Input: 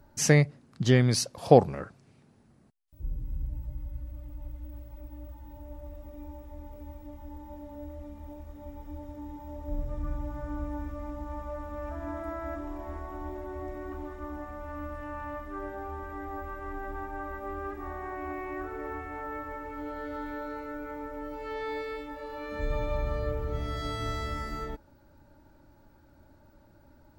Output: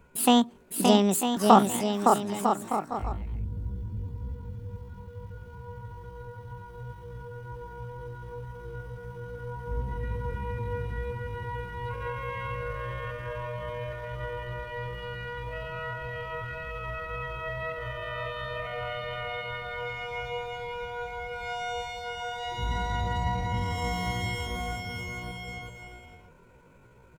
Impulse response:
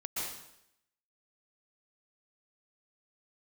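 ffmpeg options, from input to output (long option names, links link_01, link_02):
-af "aecho=1:1:560|952|1226|1418|1553:0.631|0.398|0.251|0.158|0.1,asetrate=72056,aresample=44100,atempo=0.612027"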